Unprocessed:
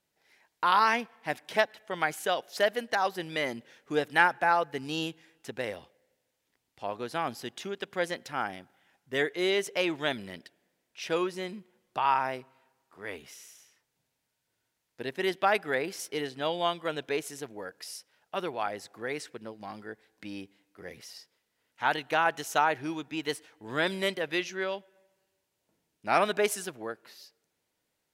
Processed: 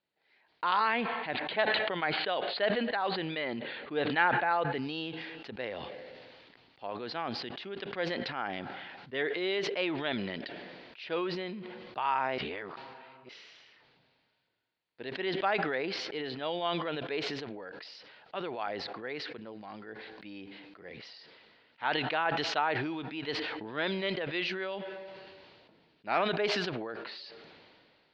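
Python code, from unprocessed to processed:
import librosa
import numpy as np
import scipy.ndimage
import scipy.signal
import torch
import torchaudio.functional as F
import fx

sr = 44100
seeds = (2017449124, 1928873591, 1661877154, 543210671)

y = fx.steep_lowpass(x, sr, hz=4600.0, slope=96, at=(0.8, 4.75))
y = fx.edit(y, sr, fx.reverse_span(start_s=12.38, length_s=0.91), tone=tone)
y = scipy.signal.sosfilt(scipy.signal.cheby1(5, 1.0, 4500.0, 'lowpass', fs=sr, output='sos'), y)
y = fx.low_shelf(y, sr, hz=120.0, db=-10.0)
y = fx.sustainer(y, sr, db_per_s=26.0)
y = F.gain(torch.from_numpy(y), -4.0).numpy()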